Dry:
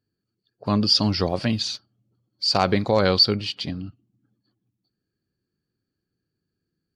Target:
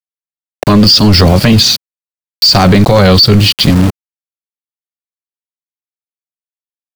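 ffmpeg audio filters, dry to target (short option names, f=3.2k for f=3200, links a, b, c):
-filter_complex "[0:a]aeval=exprs='val(0)*gte(abs(val(0)),0.0168)':c=same,acrossover=split=250[a][b];[b]acompressor=threshold=-49dB:ratio=1.5[c];[a][c]amix=inputs=2:normalize=0,apsyclip=30.5dB,volume=-1.5dB"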